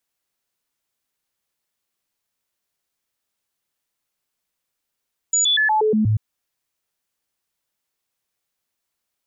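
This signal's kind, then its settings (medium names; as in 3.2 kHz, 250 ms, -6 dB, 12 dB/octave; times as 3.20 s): stepped sine 6.9 kHz down, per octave 1, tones 7, 0.12 s, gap 0.00 s -14.5 dBFS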